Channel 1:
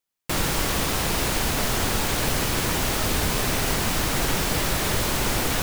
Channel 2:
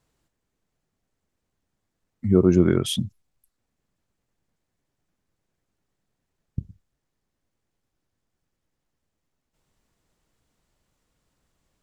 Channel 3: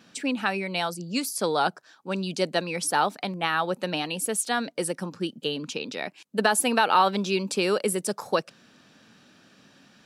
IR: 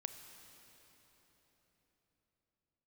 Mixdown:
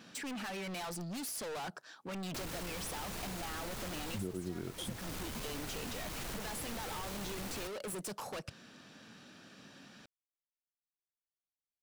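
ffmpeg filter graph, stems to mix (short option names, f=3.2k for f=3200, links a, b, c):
-filter_complex "[0:a]asoftclip=type=tanh:threshold=-24.5dB,adelay=2050,volume=-12dB[a];[1:a]adelay=1900,volume=-8dB[b];[2:a]acompressor=threshold=-24dB:ratio=6,asoftclip=type=hard:threshold=-39dB,volume=0dB,asplit=2[c][d];[d]apad=whole_len=605390[e];[b][e]sidechaingate=range=-33dB:threshold=-45dB:ratio=16:detection=peak[f];[a][f][c]amix=inputs=3:normalize=0,acompressor=threshold=-38dB:ratio=5"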